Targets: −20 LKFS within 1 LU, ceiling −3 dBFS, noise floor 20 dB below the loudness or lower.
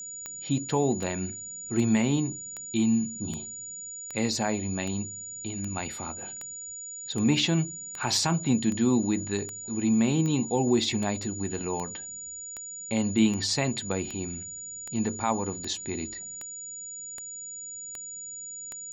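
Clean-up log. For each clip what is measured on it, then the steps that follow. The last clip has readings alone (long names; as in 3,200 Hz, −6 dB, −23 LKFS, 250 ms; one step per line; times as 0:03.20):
number of clicks 25; interfering tone 6,900 Hz; level of the tone −37 dBFS; integrated loudness −29.0 LKFS; sample peak −12.0 dBFS; target loudness −20.0 LKFS
→ click removal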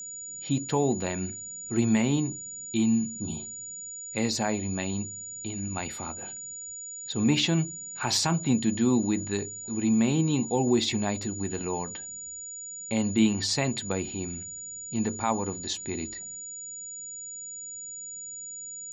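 number of clicks 0; interfering tone 6,900 Hz; level of the tone −37 dBFS
→ notch filter 6,900 Hz, Q 30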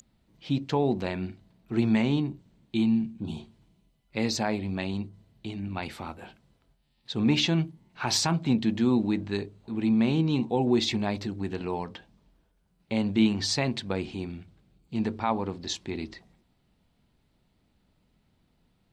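interfering tone none found; integrated loudness −28.0 LKFS; sample peak −12.5 dBFS; target loudness −20.0 LKFS
→ level +8 dB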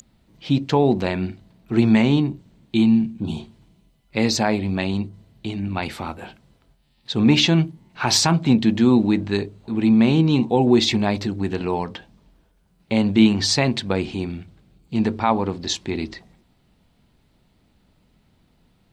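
integrated loudness −20.0 LKFS; sample peak −4.5 dBFS; background noise floor −62 dBFS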